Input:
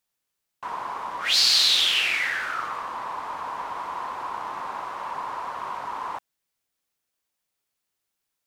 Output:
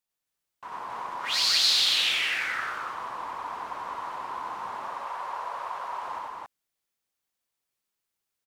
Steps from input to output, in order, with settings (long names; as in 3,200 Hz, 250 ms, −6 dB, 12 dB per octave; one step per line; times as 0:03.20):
0:04.78–0:06.03: low shelf with overshoot 370 Hz −8 dB, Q 1.5
on a send: loudspeakers that aren't time-aligned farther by 32 metres −1 dB, 94 metres 0 dB
on the sum: level −7.5 dB